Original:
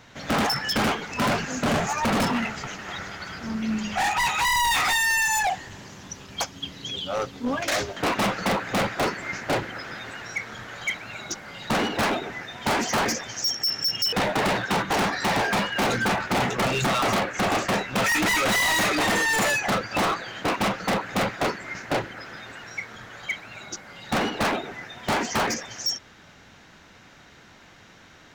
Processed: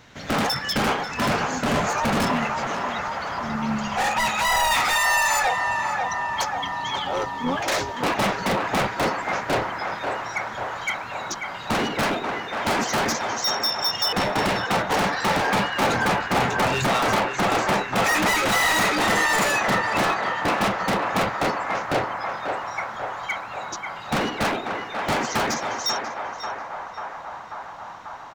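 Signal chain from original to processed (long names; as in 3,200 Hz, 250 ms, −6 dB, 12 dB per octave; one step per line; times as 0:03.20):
pitch-shifted copies added −7 semitones −10 dB
feedback echo with a band-pass in the loop 540 ms, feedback 82%, band-pass 990 Hz, level −3 dB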